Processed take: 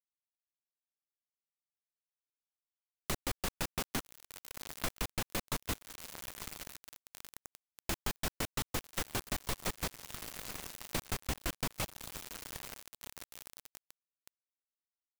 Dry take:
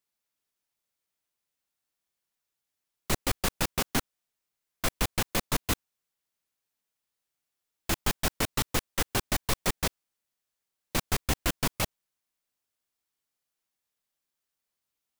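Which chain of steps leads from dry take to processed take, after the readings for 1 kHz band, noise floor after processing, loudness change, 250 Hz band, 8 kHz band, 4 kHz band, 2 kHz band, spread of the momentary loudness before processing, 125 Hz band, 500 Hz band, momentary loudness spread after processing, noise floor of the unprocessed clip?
-8.0 dB, under -85 dBFS, -9.5 dB, -8.0 dB, -7.0 dB, -7.5 dB, -7.5 dB, 5 LU, -8.0 dB, -8.0 dB, 15 LU, under -85 dBFS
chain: on a send: echo that smears into a reverb 903 ms, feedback 76%, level -15 dB; on the sum: bit crusher 6-bit; compression 2.5:1, threshold -43 dBFS, peak gain reduction 14.5 dB; trim +4 dB

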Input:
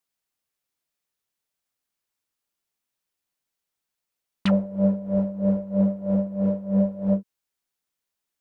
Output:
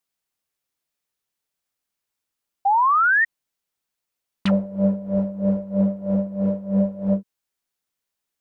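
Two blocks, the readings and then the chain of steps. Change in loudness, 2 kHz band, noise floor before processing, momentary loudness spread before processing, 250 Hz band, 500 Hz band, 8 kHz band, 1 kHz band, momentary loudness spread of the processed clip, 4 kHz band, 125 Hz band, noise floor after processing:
+2.5 dB, +24.5 dB, -85 dBFS, 3 LU, +1.0 dB, +1.0 dB, no reading, +23.0 dB, 8 LU, +1.0 dB, +1.0 dB, -84 dBFS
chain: painted sound rise, 2.65–3.25 s, 770–1900 Hz -18 dBFS; trim +1 dB

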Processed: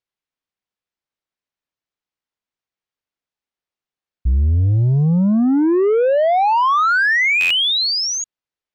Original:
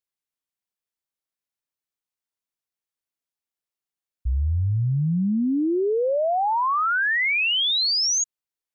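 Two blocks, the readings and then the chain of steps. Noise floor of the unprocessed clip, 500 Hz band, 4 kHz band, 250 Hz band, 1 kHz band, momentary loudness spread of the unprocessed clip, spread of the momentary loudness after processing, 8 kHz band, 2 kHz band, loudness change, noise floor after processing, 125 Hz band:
under -85 dBFS, +7.5 dB, +4.0 dB, +7.5 dB, +7.0 dB, 6 LU, 7 LU, no reading, +6.5 dB, +6.0 dB, under -85 dBFS, +7.5 dB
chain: waveshaping leveller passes 1; distance through air 120 m; buffer glitch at 7.40 s, samples 512, times 8; trim +7 dB

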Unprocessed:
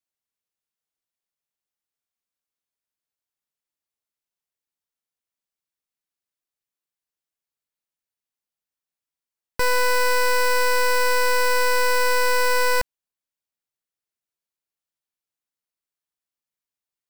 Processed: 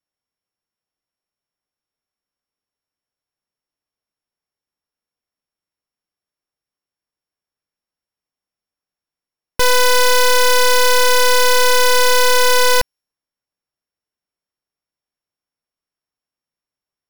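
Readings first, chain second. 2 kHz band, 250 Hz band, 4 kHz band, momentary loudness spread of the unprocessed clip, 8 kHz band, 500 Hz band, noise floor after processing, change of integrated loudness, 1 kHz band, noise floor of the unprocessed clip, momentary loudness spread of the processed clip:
+5.0 dB, +7.0 dB, +12.0 dB, 4 LU, +11.0 dB, +7.0 dB, under -85 dBFS, +7.5 dB, +6.0 dB, under -85 dBFS, 4 LU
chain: sorted samples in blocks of 8 samples; tape noise reduction on one side only decoder only; trim +7 dB

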